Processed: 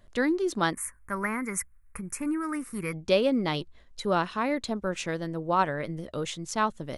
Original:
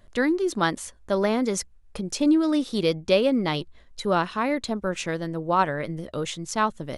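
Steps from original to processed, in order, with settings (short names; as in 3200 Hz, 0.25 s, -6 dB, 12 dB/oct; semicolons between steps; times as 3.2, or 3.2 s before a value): 0.73–2.93 EQ curve 130 Hz 0 dB, 670 Hz -14 dB, 1100 Hz +5 dB, 2200 Hz +7 dB, 3500 Hz -29 dB, 10000 Hz +10 dB; gain -3 dB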